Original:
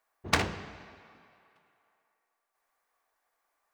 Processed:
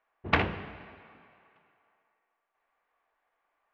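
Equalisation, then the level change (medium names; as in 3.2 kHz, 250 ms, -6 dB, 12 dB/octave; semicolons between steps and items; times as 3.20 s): Chebyshev low-pass 2.9 kHz, order 3; +2.5 dB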